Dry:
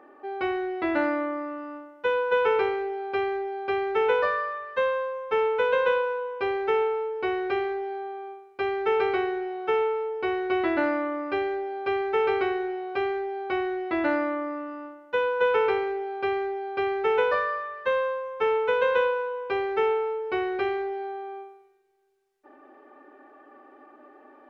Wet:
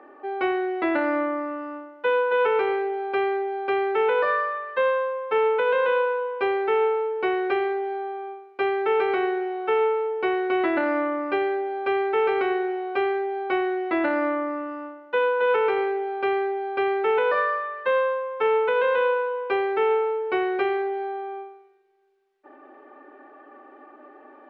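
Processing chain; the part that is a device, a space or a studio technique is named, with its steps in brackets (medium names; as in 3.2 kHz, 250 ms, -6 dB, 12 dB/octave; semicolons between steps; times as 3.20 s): DJ mixer with the lows and highs turned down (three-band isolator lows -13 dB, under 190 Hz, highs -16 dB, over 4.3 kHz; peak limiter -18 dBFS, peak gain reduction 6 dB); trim +4 dB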